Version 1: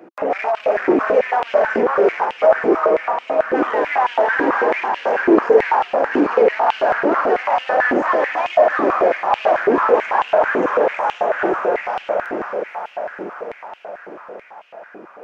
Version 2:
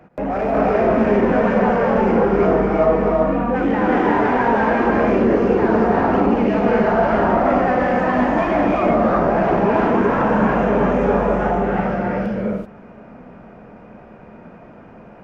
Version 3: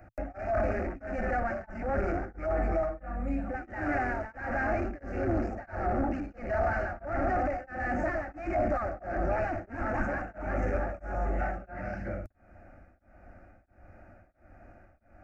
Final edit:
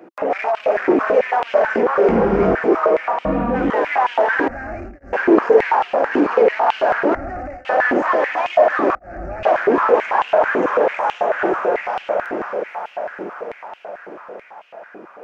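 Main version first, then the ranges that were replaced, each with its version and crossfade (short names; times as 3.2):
1
2.09–2.55 from 2
3.25–3.7 from 2
4.48–5.13 from 3
7.15–7.65 from 3
8.95–9.43 from 3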